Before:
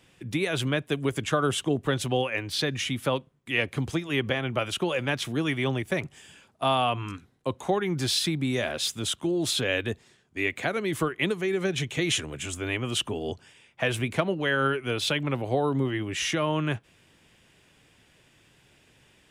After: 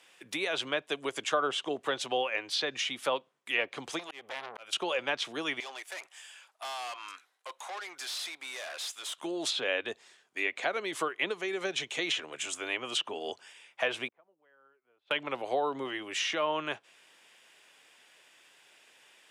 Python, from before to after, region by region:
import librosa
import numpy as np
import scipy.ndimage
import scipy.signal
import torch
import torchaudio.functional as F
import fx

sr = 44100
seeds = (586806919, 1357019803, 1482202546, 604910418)

y = fx.chain(x, sr, fx.overload_stage(gain_db=20.0),
    fx.auto_swell(attack_ms=454.0),
    fx.transformer_sat(knee_hz=1200.0), at=(3.99, 4.73))
y = fx.chain(y, sr, fx.highpass(hz=730.0, slope=12),
    fx.tube_stage(drive_db=37.0, bias=0.3), at=(5.6, 9.18))
y = fx.chain(y, sr, fx.lowpass(hz=1200.0, slope=12),
    fx.gate_flip(shuts_db=-31.0, range_db=-35), at=(14.08, 15.11))
y = scipy.signal.sosfilt(scipy.signal.butter(2, 640.0, 'highpass', fs=sr, output='sos'), y)
y = fx.env_lowpass_down(y, sr, base_hz=2700.0, full_db=-24.0)
y = fx.dynamic_eq(y, sr, hz=1800.0, q=0.97, threshold_db=-42.0, ratio=4.0, max_db=-5)
y = F.gain(torch.from_numpy(y), 2.0).numpy()